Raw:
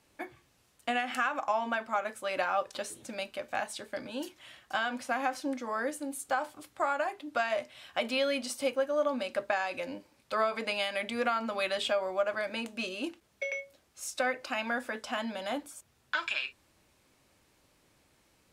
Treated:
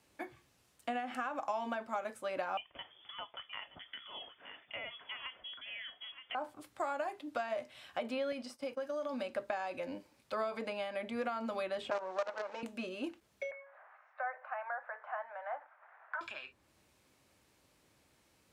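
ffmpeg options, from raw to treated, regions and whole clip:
-filter_complex "[0:a]asettb=1/sr,asplit=3[a][b][c];[a]atrim=end=2.574[d];[b]atrim=start=2.57:end=6.35,asetpts=PTS-STARTPTS,afade=t=in:d=0.004:c=qsin,afade=t=out:st=3.776:d=0.004:c=qsin,aecho=1:1:922:0.158,atrim=end_sample=166698,lowpass=f=3.1k:t=q:w=0.5098,lowpass=f=3.1k:t=q:w=0.6013,lowpass=f=3.1k:t=q:w=0.9,lowpass=f=3.1k:t=q:w=2.563,afreqshift=-3600[e];[c]atrim=start=6.346[f];[d][e]acrossfade=d=0.004:c1=hsin:c2=qsin[g];[g][f]acrossfade=d=0.004:c1=qsin:c2=hsin,asettb=1/sr,asplit=3[h][i][j];[h]atrim=end=8.324[k];[i]atrim=start=8.32:end=9.19,asetpts=PTS-STARTPTS,afade=t=in:d=0.004:c=qsin,afade=t=out:st=0.866:d=0.004:c=qsin,agate=range=-33dB:threshold=-36dB:ratio=3:release=100:detection=peak,equalizer=f=5.1k:t=o:w=0.22:g=10.5,acompressor=threshold=-32dB:ratio=4:attack=3.2:release=140:knee=1:detection=peak[l];[j]atrim=start=9.186[m];[k][l]acrossfade=d=0.004:c1=hsin:c2=qsin[n];[n][m]acrossfade=d=0.004:c1=qsin:c2=hsin,asettb=1/sr,asplit=3[o][p][q];[o]atrim=end=11.904[r];[p]atrim=start=11.9:end=12.63,asetpts=PTS-STARTPTS,afade=t=in:d=0.004:c=qsin,afade=t=out:st=0.726:d=0.004:c=qsin,acrusher=bits=5:dc=4:mix=0:aa=0.000001,highpass=410,equalizer=f=490:t=q:w=4:g=8,equalizer=f=910:t=q:w=4:g=8,equalizer=f=1.4k:t=q:w=4:g=4,equalizer=f=3.3k:t=q:w=4:g=-4,equalizer=f=4.9k:t=q:w=4:g=-4,lowpass=f=5.8k:w=0.5412,lowpass=f=5.8k:w=1.3066[s];[q]atrim=start=12.626[t];[r][s]acrossfade=d=0.004:c1=hsin:c2=qsin[u];[u][t]acrossfade=d=0.004:c1=qsin:c2=hsin,asettb=1/sr,asplit=3[v][w][x];[v]atrim=end=13.514[y];[w]atrim=start=13.51:end=16.21,asetpts=PTS-STARTPTS,afade=t=in:d=0.004:c=qsin,afade=t=out:st=2.696:d=0.004:c=qsin,aeval=exprs='val(0)+0.5*0.00631*sgn(val(0))':c=same,asuperpass=centerf=1100:order=8:qfactor=0.9[z];[x]atrim=start=16.206[aa];[y][z]acrossfade=d=0.004:c1=hsin:c2=qsin[ab];[ab][aa]acrossfade=d=0.004:c1=qsin:c2=hsin,highpass=45,acrossover=split=1100|2300[ac][ad][ae];[ac]acompressor=threshold=-31dB:ratio=4[af];[ad]acompressor=threshold=-47dB:ratio=4[ag];[ae]acompressor=threshold=-52dB:ratio=4[ah];[af][ag][ah]amix=inputs=3:normalize=0,volume=-2.5dB"

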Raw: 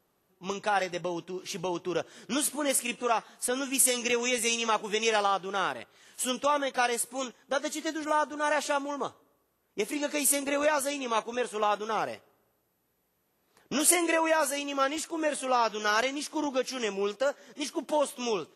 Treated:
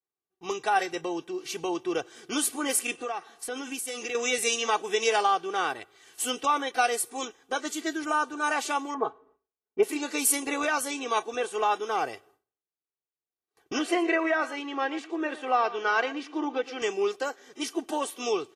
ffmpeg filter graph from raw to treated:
-filter_complex "[0:a]asettb=1/sr,asplit=3[a][b][c];[a]atrim=end=2.974[d];[b]atrim=start=2.97:end=4.15,asetpts=PTS-STARTPTS,afade=t=in:d=0.004:c=qsin,afade=t=out:st=1.176:d=0.004:c=qsin,acompressor=threshold=-31dB:ratio=4:attack=3.2:release=140:knee=1:detection=peak,highshelf=f=5.6k:g=-4[e];[c]atrim=start=4.146[f];[d][e]acrossfade=d=0.004:c1=hsin:c2=qsin[g];[g][f]acrossfade=d=0.004:c1=qsin:c2=hsin,asettb=1/sr,asplit=3[h][i][j];[h]atrim=end=8.944[k];[i]atrim=start=8.94:end=9.83,asetpts=PTS-STARTPTS,afade=t=in:d=0.004:c=qsin,afade=t=out:st=0.886:d=0.004:c=qsin,lowpass=1.6k,aecho=1:1:4.7:0.99,atrim=end_sample=39249[l];[j]atrim=start=9.826[m];[k][l]acrossfade=d=0.004:c1=hsin:c2=qsin[n];[n][m]acrossfade=d=0.004:c1=qsin:c2=hsin,asettb=1/sr,asplit=3[o][p][q];[o]atrim=end=13.794[r];[p]atrim=start=13.79:end=16.82,asetpts=PTS-STARTPTS,afade=t=in:d=0.004:c=qsin,afade=t=out:st=3.026:d=0.004:c=qsin,highpass=180,lowpass=2.8k,aecho=1:1:117:0.158,atrim=end_sample=133623[s];[q]atrim=start=16.816[t];[r][s]acrossfade=d=0.004:c1=hsin:c2=qsin[u];[u][t]acrossfade=d=0.004:c1=qsin:c2=hsin,agate=range=-33dB:threshold=-56dB:ratio=3:detection=peak,lowshelf=f=72:g=-7.5,aecho=1:1:2.6:0.64"

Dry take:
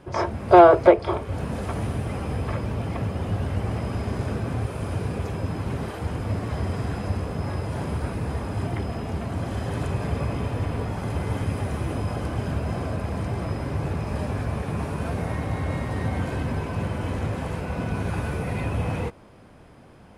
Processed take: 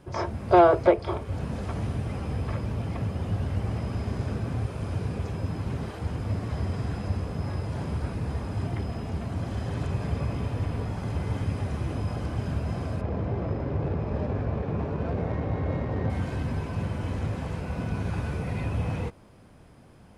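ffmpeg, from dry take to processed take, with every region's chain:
-filter_complex "[0:a]asettb=1/sr,asplit=3[a][b][c];[a]atrim=end=13.014[d];[b]atrim=start=13.01:end=16.1,asetpts=PTS-STARTPTS,afade=t=in:d=0.004:c=qsin,afade=t=out:st=3.086:d=0.004:c=qsin,lowpass=7.3k,equalizer=f=460:t=o:w=1.3:g=7,adynamicsmooth=sensitivity=2:basefreq=2.3k[e];[c]atrim=start=16.096[f];[d][e]acrossfade=d=0.004:c1=hsin:c2=qsin[g];[g][f]acrossfade=d=0.004:c1=qsin:c2=hsin,bass=f=250:g=4,treble=f=4k:g=5,acrossover=split=6900[h][i];[i]acompressor=threshold=-59dB:ratio=4:attack=1:release=60[j];[h][j]amix=inputs=2:normalize=0,volume=-5.5dB"

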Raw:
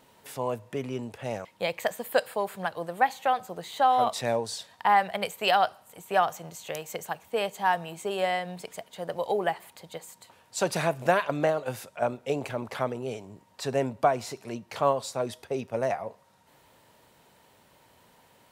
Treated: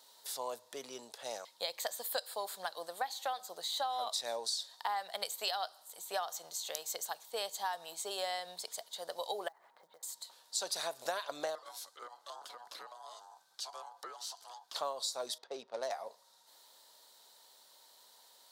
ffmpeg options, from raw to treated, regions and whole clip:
-filter_complex "[0:a]asettb=1/sr,asplit=3[a][b][c];[a]atrim=end=9.484[d];[b]atrim=start=9.48:end=10.03,asetpts=PTS-STARTPTS,afade=t=in:d=0.004:c=qsin,afade=t=out:st=0.546:d=0.004:c=qsin,lowpass=f=1.9k:w=0.5412,lowpass=f=1.9k:w=1.3066,acompressor=threshold=-47dB:ratio=6:attack=3.2:release=140:knee=1:detection=peak,acrusher=bits=7:mode=log:mix=0:aa=0.000001[e];[c]atrim=start=10.026[f];[d][e]acrossfade=d=0.004:c1=hsin:c2=qsin[g];[g][f]acrossfade=d=0.004:c1=qsin:c2=hsin,asettb=1/sr,asplit=3[h][i][j];[h]atrim=end=11.554[k];[i]atrim=start=11.55:end=14.75,asetpts=PTS-STARTPTS,afade=t=in:d=0.004:c=qsin,afade=t=out:st=3.196:d=0.004:c=qsin,afreqshift=-240,aeval=exprs='val(0)*sin(2*PI*850*n/s)':c=same,acompressor=threshold=-45dB:ratio=2:attack=3.2:release=140:knee=1:detection=peak[l];[j]atrim=start=14.746[m];[k][l]acrossfade=d=0.004:c1=hsin:c2=qsin[n];[n][m]acrossfade=d=0.004:c1=qsin:c2=hsin,asettb=1/sr,asplit=3[o][p][q];[o]atrim=end=15.384[r];[p]atrim=start=15.38:end=15.92,asetpts=PTS-STARTPTS,afade=t=in:d=0.004:c=qsin,afade=t=out:st=0.536:d=0.004:c=qsin,lowshelf=f=89:g=-9.5,adynamicsmooth=sensitivity=7:basefreq=1.9k[s];[q]atrim=start=15.916[t];[r][s]acrossfade=d=0.004:c1=hsin:c2=qsin[u];[u][t]acrossfade=d=0.004:c1=qsin:c2=hsin,highpass=620,highshelf=f=3.2k:t=q:w=3:g=7.5,acompressor=threshold=-28dB:ratio=6,volume=-5dB"

